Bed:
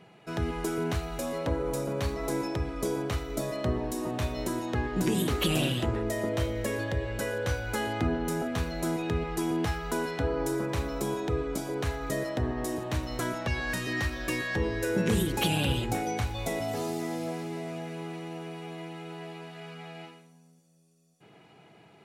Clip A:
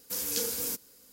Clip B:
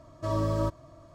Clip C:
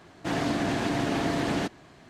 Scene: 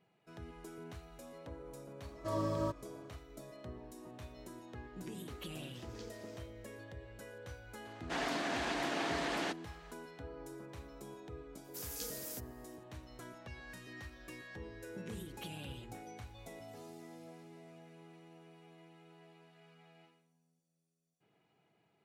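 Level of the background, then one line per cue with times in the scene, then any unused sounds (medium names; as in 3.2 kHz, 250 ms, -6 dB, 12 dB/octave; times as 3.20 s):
bed -19 dB
2.02 s: add B -6 dB + high-pass 130 Hz
5.63 s: add A -15.5 dB + distance through air 170 m
7.85 s: add C -5.5 dB + frequency weighting A
11.64 s: add A -12.5 dB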